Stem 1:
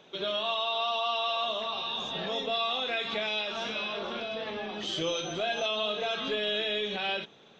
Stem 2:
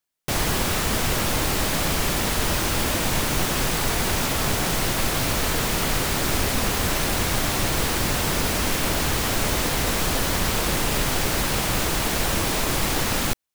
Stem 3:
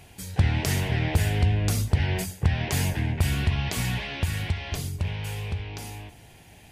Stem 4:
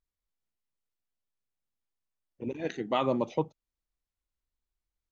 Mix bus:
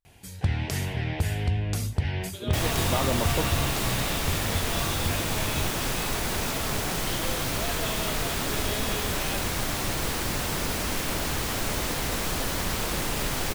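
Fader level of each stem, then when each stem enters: −6.5, −5.5, −4.0, −1.5 decibels; 2.20, 2.25, 0.05, 0.00 seconds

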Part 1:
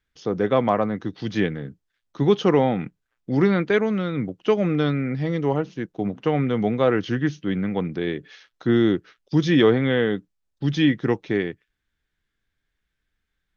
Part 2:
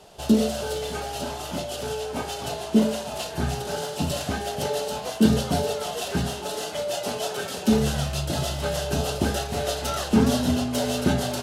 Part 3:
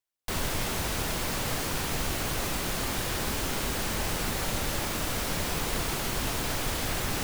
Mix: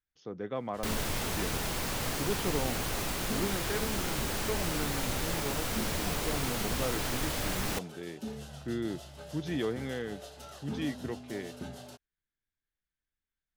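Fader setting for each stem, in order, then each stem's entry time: −16.0, −20.0, −3.0 decibels; 0.00, 0.55, 0.55 seconds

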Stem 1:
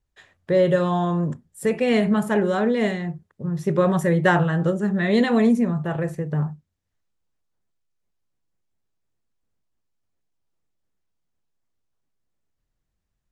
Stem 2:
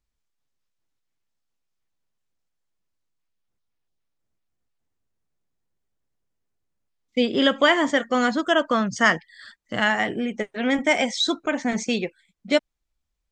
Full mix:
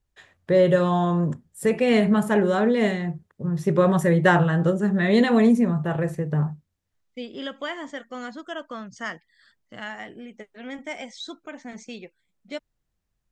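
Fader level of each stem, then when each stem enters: +0.5, −14.0 decibels; 0.00, 0.00 seconds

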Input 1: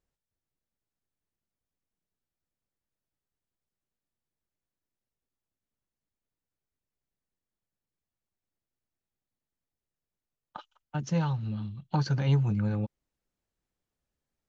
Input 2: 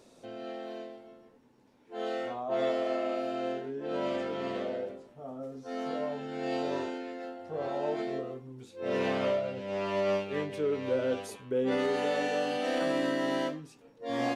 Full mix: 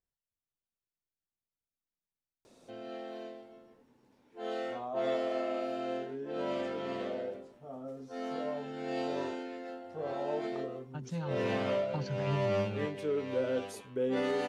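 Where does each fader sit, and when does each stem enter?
−10.0, −2.5 decibels; 0.00, 2.45 seconds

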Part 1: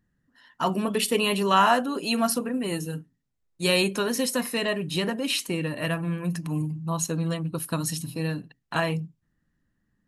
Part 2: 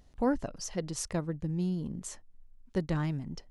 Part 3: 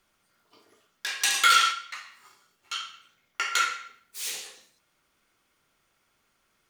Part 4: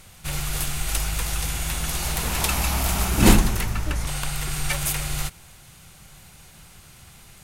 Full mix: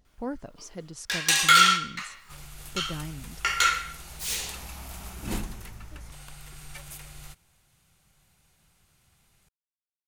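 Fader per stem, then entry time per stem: muted, −5.5 dB, +2.5 dB, −17.5 dB; muted, 0.00 s, 0.05 s, 2.05 s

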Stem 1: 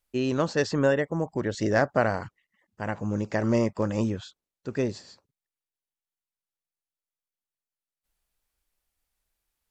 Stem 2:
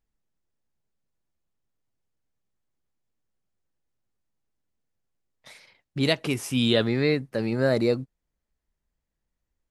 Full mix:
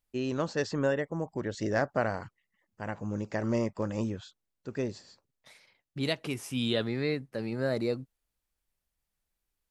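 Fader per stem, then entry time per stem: −5.5, −7.5 decibels; 0.00, 0.00 seconds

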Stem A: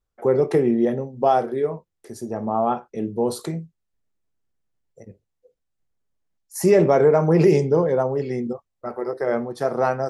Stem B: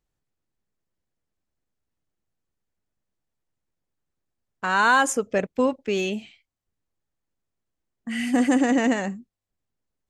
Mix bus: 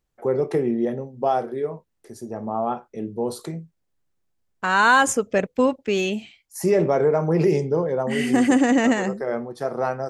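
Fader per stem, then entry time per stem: −3.5, +2.5 decibels; 0.00, 0.00 seconds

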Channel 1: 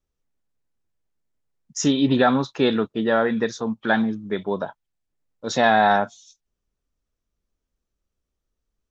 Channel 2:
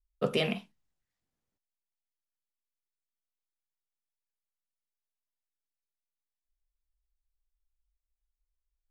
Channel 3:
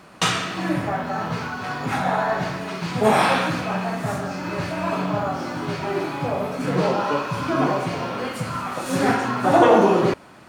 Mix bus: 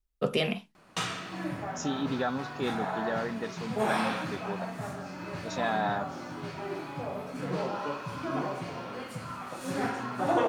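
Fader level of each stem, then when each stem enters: −13.0, +1.0, −11.5 decibels; 0.00, 0.00, 0.75 seconds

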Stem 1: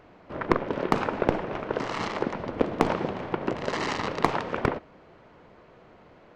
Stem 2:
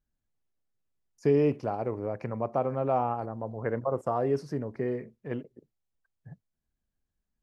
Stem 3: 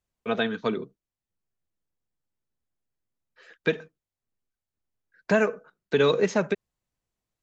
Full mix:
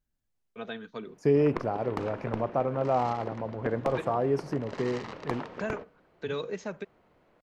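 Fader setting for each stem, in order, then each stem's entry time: −11.5, +0.5, −12.5 decibels; 1.05, 0.00, 0.30 seconds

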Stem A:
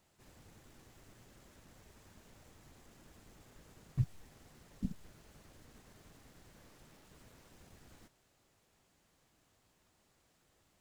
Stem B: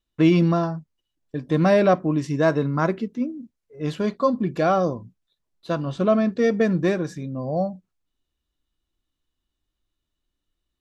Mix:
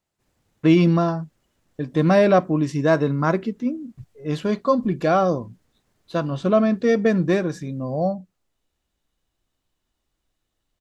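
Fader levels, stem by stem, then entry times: −9.0, +1.5 decibels; 0.00, 0.45 seconds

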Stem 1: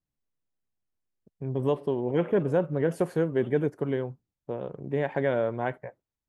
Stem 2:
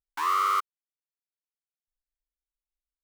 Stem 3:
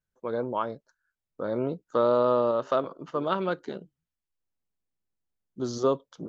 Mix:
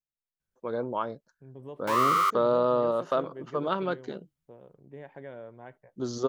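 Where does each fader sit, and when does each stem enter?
−17.0, +1.0, −1.5 decibels; 0.00, 1.70, 0.40 seconds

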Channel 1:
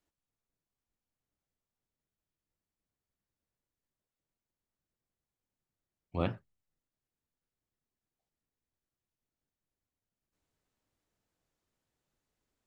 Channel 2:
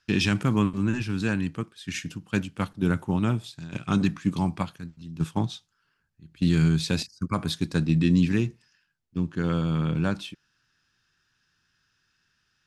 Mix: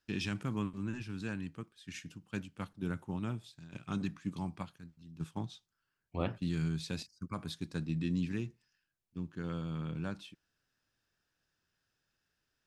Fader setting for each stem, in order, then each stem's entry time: −2.5, −13.0 decibels; 0.00, 0.00 seconds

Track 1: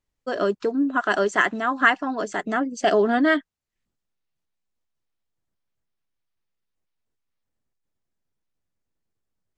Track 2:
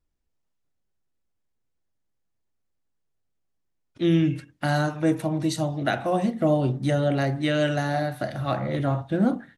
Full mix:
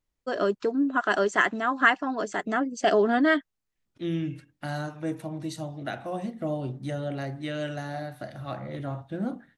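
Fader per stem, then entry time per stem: −2.5, −9.0 decibels; 0.00, 0.00 seconds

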